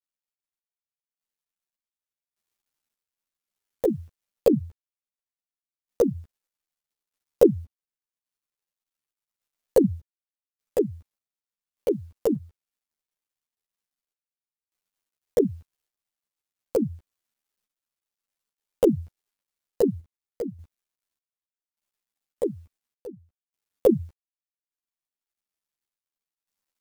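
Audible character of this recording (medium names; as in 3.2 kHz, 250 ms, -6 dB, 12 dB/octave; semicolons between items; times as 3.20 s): a quantiser's noise floor 12-bit, dither none; random-step tremolo 1.7 Hz, depth 95%; a shimmering, thickened sound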